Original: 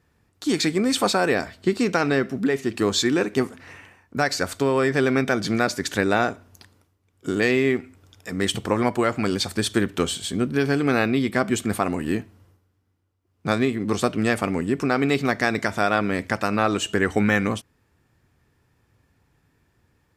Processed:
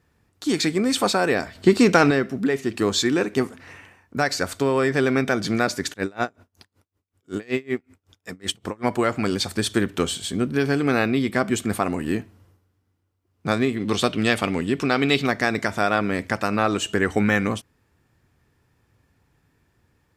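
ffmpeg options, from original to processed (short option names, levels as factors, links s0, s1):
-filter_complex "[0:a]asettb=1/sr,asplit=3[s0][s1][s2];[s0]atrim=end=1.554[s3];[s1]atrim=start=1.55:end=2.11,asetpts=PTS-STARTPTS,afade=t=in:d=0.004:c=qsin,afade=t=out:st=0.556:d=0.004:c=qsin,acontrast=73[s4];[s2]atrim=start=2.106[s5];[s3][s4]acrossfade=d=0.004:c1=hsin:c2=qsin[s6];[s6][s5]acrossfade=d=0.004:c1=qsin:c2=hsin,asplit=3[s7][s8][s9];[s7]afade=t=out:st=5.92:d=0.02[s10];[s8]aeval=exprs='val(0)*pow(10,-30*(0.5-0.5*cos(2*PI*5.3*n/s))/20)':c=same,afade=t=in:st=5.92:d=0.02,afade=t=out:st=8.83:d=0.02[s11];[s9]afade=t=in:st=8.83:d=0.02[s12];[s10][s11][s12]amix=inputs=3:normalize=0,asettb=1/sr,asplit=3[s13][s14][s15];[s13]atrim=end=13.764[s16];[s14]atrim=start=13.76:end=15.27,asetpts=PTS-STARTPTS,afade=t=in:d=0.004:c=qsin,afade=t=out:st=1.506:d=0.004:c=qsin,equalizer=f=3400:t=o:w=0.91:g=10[s17];[s15]atrim=start=15.266[s18];[s16][s17]acrossfade=d=0.004:c1=hsin:c2=qsin[s19];[s19][s18]acrossfade=d=0.004:c1=qsin:c2=hsin"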